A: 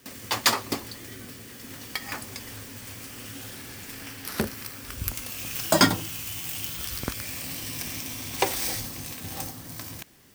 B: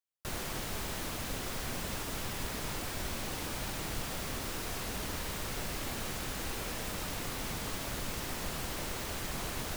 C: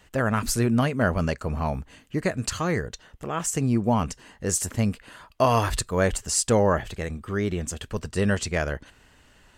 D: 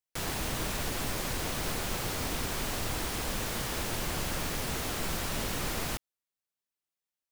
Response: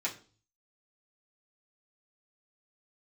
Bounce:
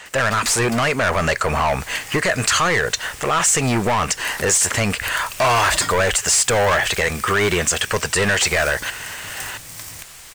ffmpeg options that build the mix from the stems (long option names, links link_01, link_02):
-filter_complex "[0:a]volume=-9.5dB[link_01];[1:a]tiltshelf=frequency=970:gain=-4.5,adelay=1550,volume=-17.5dB[link_02];[2:a]asplit=2[link_03][link_04];[link_04]highpass=frequency=720:poles=1,volume=27dB,asoftclip=type=tanh:threshold=-6.5dB[link_05];[link_03][link_05]amix=inputs=2:normalize=0,lowpass=frequency=3400:poles=1,volume=-6dB,volume=-2dB[link_06];[3:a]volume=-17dB[link_07];[link_01][link_02][link_06][link_07]amix=inputs=4:normalize=0,equalizer=frequency=250:width_type=o:width=1:gain=-9,equalizer=frequency=2000:width_type=o:width=1:gain=4,equalizer=frequency=8000:width_type=o:width=1:gain=8,dynaudnorm=framelen=150:gausssize=9:maxgain=10dB,alimiter=limit=-10dB:level=0:latency=1:release=115"